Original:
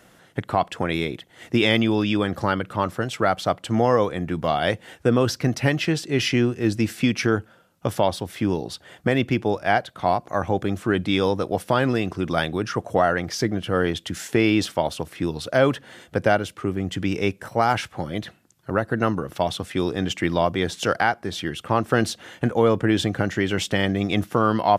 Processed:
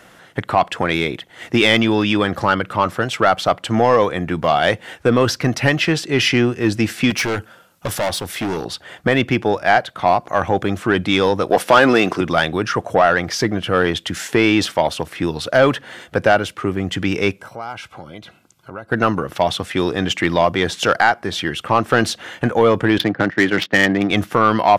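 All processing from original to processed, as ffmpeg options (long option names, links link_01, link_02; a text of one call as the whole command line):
ffmpeg -i in.wav -filter_complex "[0:a]asettb=1/sr,asplit=3[link_01][link_02][link_03];[link_01]atrim=end=7.104[link_04];[link_02]atrim=start=7.1:end=8.65,asetpts=PTS-STARTPTS,afade=type=in:duration=0.004:curve=qsin,afade=type=out:start_time=1.546:duration=0.004:curve=qsin,aemphasis=mode=production:type=cd,asoftclip=type=hard:threshold=-23.5dB[link_05];[link_03]atrim=start=8.646[link_06];[link_04][link_05]acrossfade=duration=0.004:curve1=hsin:curve2=qsin[link_07];[link_07][link_06]acrossfade=duration=0.004:curve1=qsin:curve2=hsin,asettb=1/sr,asplit=3[link_08][link_09][link_10];[link_08]atrim=end=11.504[link_11];[link_09]atrim=start=11.5:end=12.21,asetpts=PTS-STARTPTS,afade=type=in:duration=0.004:curve=qsin,afade=type=out:start_time=0.706:duration=0.004:curve=qsin,highpass=220,acontrast=61[link_12];[link_10]atrim=start=12.206[link_13];[link_11][link_12]acrossfade=duration=0.004:curve1=hsin:curve2=qsin[link_14];[link_14][link_13]acrossfade=duration=0.004:curve1=qsin:curve2=hsin,asettb=1/sr,asplit=3[link_15][link_16][link_17];[link_15]atrim=end=17.384[link_18];[link_16]atrim=start=17.38:end=18.92,asetpts=PTS-STARTPTS,afade=type=in:duration=0.004:curve=qsin,afade=type=out:start_time=1.536:duration=0.004:curve=qsin,acompressor=threshold=-47dB:ratio=2:attack=3.2:release=140:knee=1:detection=peak,asuperstop=centerf=1800:order=20:qfactor=6.4[link_19];[link_17]atrim=start=18.916[link_20];[link_18][link_19]acrossfade=duration=0.004:curve1=hsin:curve2=qsin[link_21];[link_21][link_20]acrossfade=duration=0.004:curve1=qsin:curve2=hsin,asettb=1/sr,asplit=3[link_22][link_23][link_24];[link_22]atrim=end=22.984[link_25];[link_23]atrim=start=22.98:end=24.11,asetpts=PTS-STARTPTS,afade=type=in:duration=0.004:curve=qsin,afade=type=out:start_time=1.126:duration=0.004:curve=qsin,agate=range=-10dB:threshold=-28dB:ratio=16:release=100:detection=peak,highpass=frequency=120:width=0.5412,highpass=frequency=120:width=1.3066,equalizer=frequency=300:width_type=q:width=4:gain=5,equalizer=frequency=1800:width_type=q:width=4:gain=6,equalizer=frequency=4500:width_type=q:width=4:gain=6,lowpass=frequency=6800:width=0.5412,lowpass=frequency=6800:width=1.3066,adynamicsmooth=sensitivity=2:basefreq=1500[link_26];[link_24]atrim=start=24.106[link_27];[link_25][link_26]acrossfade=duration=0.004:curve1=hsin:curve2=qsin[link_28];[link_28][link_27]acrossfade=duration=0.004:curve1=qsin:curve2=hsin,equalizer=frequency=1600:width=0.36:gain=6,acontrast=50,volume=-2.5dB" out.wav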